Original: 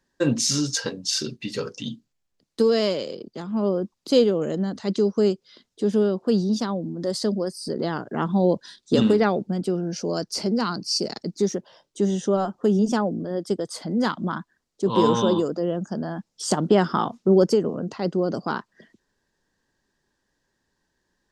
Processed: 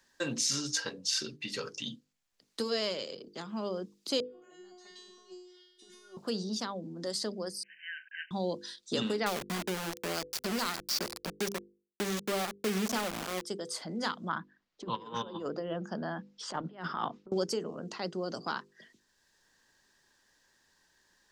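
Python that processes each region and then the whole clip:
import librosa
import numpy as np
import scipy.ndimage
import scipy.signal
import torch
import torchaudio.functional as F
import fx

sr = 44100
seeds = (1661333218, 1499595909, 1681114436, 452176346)

y = fx.chain(x, sr, fx.dynamic_eq(hz=1200.0, q=1.0, threshold_db=-38.0, ratio=4.0, max_db=4),
    fx.over_compress(threshold_db=-24.0, ratio=-0.5),
    fx.comb_fb(f0_hz=360.0, decay_s=0.81, harmonics='all', damping=0.0, mix_pct=100), at=(4.2, 6.17))
y = fx.chain(y, sr, fx.block_float(bits=5),
    fx.brickwall_bandpass(low_hz=1500.0, high_hz=3100.0), at=(7.63, 8.31))
y = fx.chain(y, sr, fx.low_shelf(hz=370.0, db=4.5),
    fx.echo_filtered(ms=94, feedback_pct=80, hz=4700.0, wet_db=-21.0),
    fx.sample_gate(floor_db=-22.5), at=(9.26, 13.45))
y = fx.chain(y, sr, fx.lowpass(hz=2400.0, slope=12),
    fx.over_compress(threshold_db=-25.0, ratio=-0.5), at=(14.29, 17.32))
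y = fx.tilt_shelf(y, sr, db=-6.0, hz=790.0)
y = fx.hum_notches(y, sr, base_hz=50, count=10)
y = fx.band_squash(y, sr, depth_pct=40)
y = y * librosa.db_to_amplitude(-9.0)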